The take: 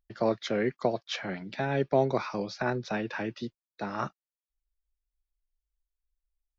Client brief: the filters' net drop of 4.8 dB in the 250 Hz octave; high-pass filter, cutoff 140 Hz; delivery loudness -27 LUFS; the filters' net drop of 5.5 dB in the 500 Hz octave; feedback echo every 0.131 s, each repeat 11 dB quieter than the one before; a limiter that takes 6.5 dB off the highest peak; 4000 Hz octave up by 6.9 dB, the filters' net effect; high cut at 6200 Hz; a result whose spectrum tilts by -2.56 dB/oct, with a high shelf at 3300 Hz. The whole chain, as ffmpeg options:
-af "highpass=140,lowpass=6.2k,equalizer=f=250:t=o:g=-3.5,equalizer=f=500:t=o:g=-6.5,highshelf=f=3.3k:g=3.5,equalizer=f=4k:t=o:g=7,alimiter=limit=-21dB:level=0:latency=1,aecho=1:1:131|262|393:0.282|0.0789|0.0221,volume=7.5dB"

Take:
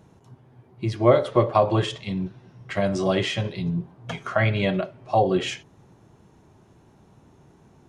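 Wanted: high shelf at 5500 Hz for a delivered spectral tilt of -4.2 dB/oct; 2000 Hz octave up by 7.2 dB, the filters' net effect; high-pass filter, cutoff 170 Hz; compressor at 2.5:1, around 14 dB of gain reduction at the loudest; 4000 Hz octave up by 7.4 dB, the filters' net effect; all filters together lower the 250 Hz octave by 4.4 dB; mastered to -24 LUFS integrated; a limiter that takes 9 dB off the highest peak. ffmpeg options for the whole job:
-af "highpass=170,equalizer=f=250:t=o:g=-5.5,equalizer=f=2k:t=o:g=6.5,equalizer=f=4k:t=o:g=5.5,highshelf=f=5.5k:g=5,acompressor=threshold=-34dB:ratio=2.5,volume=12dB,alimiter=limit=-12.5dB:level=0:latency=1"

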